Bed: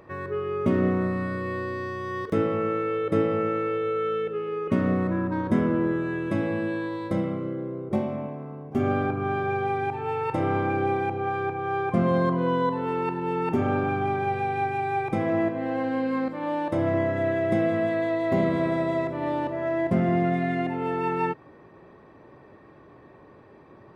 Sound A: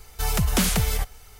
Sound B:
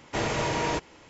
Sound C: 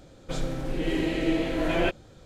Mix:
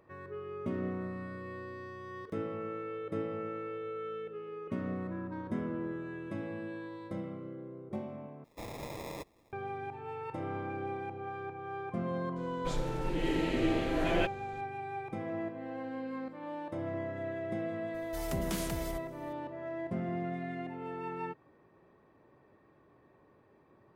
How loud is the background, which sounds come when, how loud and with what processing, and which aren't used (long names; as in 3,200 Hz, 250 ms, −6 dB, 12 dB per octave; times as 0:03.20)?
bed −13 dB
0:08.44: overwrite with B −14.5 dB + sample-rate reduction 1,500 Hz
0:12.36: mix in C −5 dB
0:17.94: mix in A −16.5 dB